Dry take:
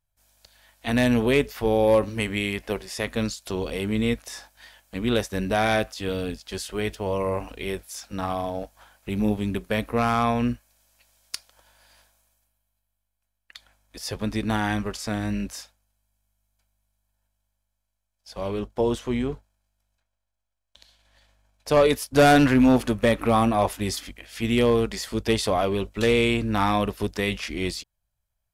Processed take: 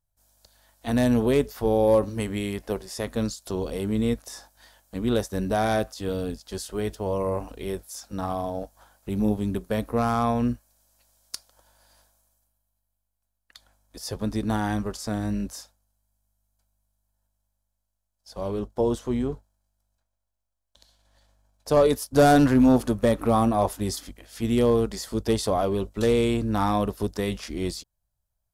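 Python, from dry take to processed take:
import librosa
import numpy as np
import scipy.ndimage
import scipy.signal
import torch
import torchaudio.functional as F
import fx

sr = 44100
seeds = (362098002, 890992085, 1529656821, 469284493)

y = fx.peak_eq(x, sr, hz=2400.0, db=-11.0, octaves=1.2)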